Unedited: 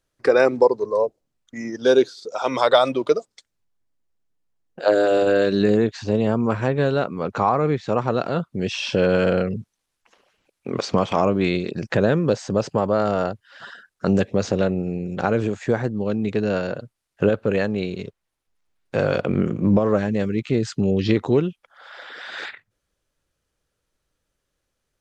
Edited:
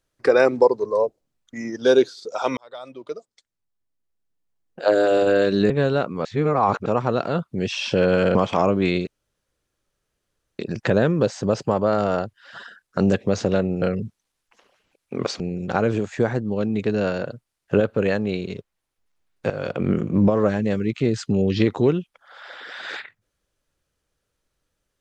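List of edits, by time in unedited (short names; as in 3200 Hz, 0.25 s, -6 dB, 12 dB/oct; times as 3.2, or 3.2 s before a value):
2.57–5.04 fade in
5.7–6.71 cut
7.26–7.87 reverse
9.36–10.94 move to 14.89
11.66 insert room tone 1.52 s
18.99–19.4 fade in, from -13.5 dB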